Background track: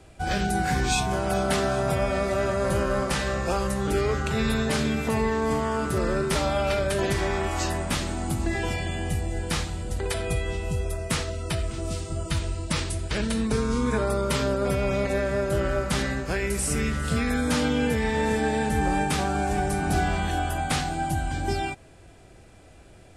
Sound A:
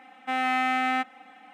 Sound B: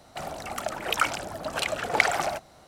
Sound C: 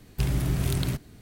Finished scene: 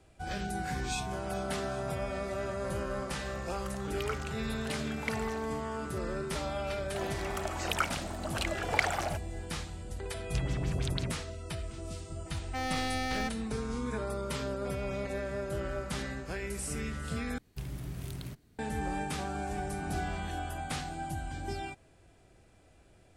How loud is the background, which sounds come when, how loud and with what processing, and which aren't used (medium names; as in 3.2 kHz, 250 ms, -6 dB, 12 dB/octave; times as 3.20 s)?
background track -10.5 dB
3.08 s: add B -15 dB + high-pass 870 Hz
6.79 s: add B -6.5 dB
10.15 s: add C -7.5 dB + LFO low-pass sine 6.1 Hz 540–7400 Hz
12.26 s: add A -6 dB + one-sided wavefolder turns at -26 dBFS
17.38 s: replace with C -14 dB